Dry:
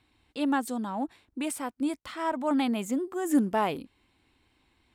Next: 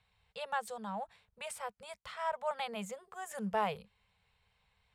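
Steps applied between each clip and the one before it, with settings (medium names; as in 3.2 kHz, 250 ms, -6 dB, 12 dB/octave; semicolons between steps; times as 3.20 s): elliptic band-stop 200–440 Hz, stop band 40 dB; treble shelf 9.7 kHz -10.5 dB; trim -4.5 dB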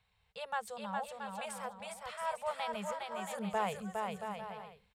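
bouncing-ball echo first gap 410 ms, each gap 0.65×, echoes 5; trim -1.5 dB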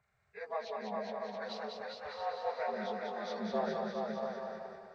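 frequency axis rescaled in octaves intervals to 79%; two-band feedback delay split 600 Hz, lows 132 ms, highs 197 ms, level -3.5 dB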